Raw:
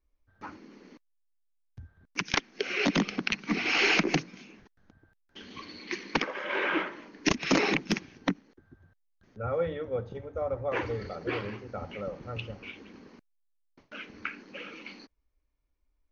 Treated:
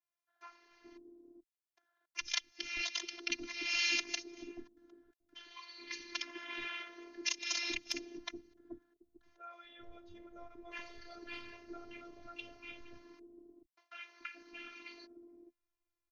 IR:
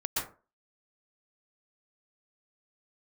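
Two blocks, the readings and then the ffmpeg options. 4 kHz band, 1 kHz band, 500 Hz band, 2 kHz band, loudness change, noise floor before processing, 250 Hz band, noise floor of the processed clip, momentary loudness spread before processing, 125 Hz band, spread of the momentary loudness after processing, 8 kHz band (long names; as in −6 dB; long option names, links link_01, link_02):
−4.5 dB, −16.0 dB, −20.0 dB, −9.5 dB, −9.0 dB, −74 dBFS, −17.5 dB, below −85 dBFS, 19 LU, below −30 dB, 22 LU, can't be measured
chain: -filter_complex "[0:a]acrossover=split=190|2300[link_01][link_02][link_03];[link_01]flanger=delay=22.5:depth=7:speed=0.78[link_04];[link_02]acompressor=threshold=-43dB:ratio=6[link_05];[link_04][link_05][link_03]amix=inputs=3:normalize=0,highpass=60,acrossover=split=550[link_06][link_07];[link_06]adelay=430[link_08];[link_08][link_07]amix=inputs=2:normalize=0,afftfilt=real='hypot(re,im)*cos(PI*b)':imag='0':win_size=512:overlap=0.75,adynamicequalizer=threshold=0.00447:dfrequency=4000:dqfactor=0.7:tfrequency=4000:tqfactor=0.7:attack=5:release=100:ratio=0.375:range=2.5:mode=boostabove:tftype=highshelf,volume=-1.5dB"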